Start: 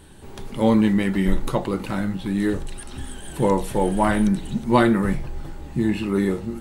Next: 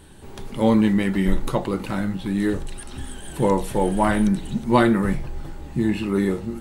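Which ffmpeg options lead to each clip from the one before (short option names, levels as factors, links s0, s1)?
-af anull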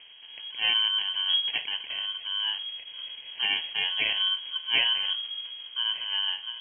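-af "acompressor=mode=upward:threshold=0.0158:ratio=2.5,acrusher=samples=22:mix=1:aa=0.000001,lowpass=f=2800:t=q:w=0.5098,lowpass=f=2800:t=q:w=0.6013,lowpass=f=2800:t=q:w=0.9,lowpass=f=2800:t=q:w=2.563,afreqshift=-3300,volume=0.398"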